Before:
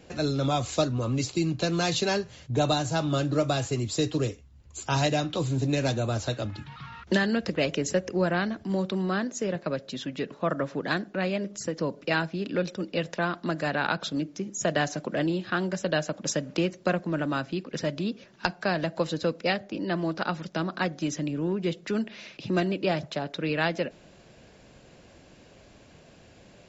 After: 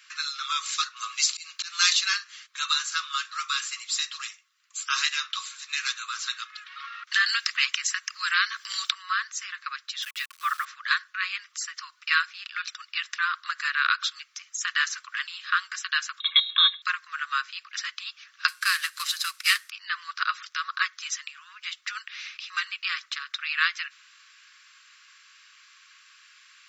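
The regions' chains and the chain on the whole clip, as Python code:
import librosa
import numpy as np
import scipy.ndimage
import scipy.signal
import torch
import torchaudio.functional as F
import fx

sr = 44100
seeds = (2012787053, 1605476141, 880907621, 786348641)

y = fx.chain(x, sr, fx.high_shelf(hz=3000.0, db=8.0),
    fx.auto_swell(attack_ms=200.0), at=(0.96, 1.93))
y = fx.chain(y, sr, fx.high_shelf(hz=4000.0, db=7.0),
    fx.band_squash(depth_pct=100), at=(7.26, 8.93))
y = fx.chain(y, sr, fx.steep_highpass(hz=730.0, slope=48),
    fx.high_shelf(hz=2400.0, db=4.5),
    fx.quant_dither(seeds[0], bits=8, dither='none'), at=(10.02, 10.65))
y = fx.chain(y, sr, fx.comb(ms=1.8, depth=0.73),
    fx.freq_invert(carrier_hz=3900), at=(16.2, 16.82))
y = fx.chain(y, sr, fx.cvsd(bps=64000),
    fx.tilt_eq(slope=2.5), at=(18.48, 19.7))
y = scipy.signal.sosfilt(scipy.signal.cheby1(8, 1.0, 1100.0, 'highpass', fs=sr, output='sos'), y)
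y = fx.notch(y, sr, hz=6800.0, q=17.0)
y = y * 10.0 ** (7.0 / 20.0)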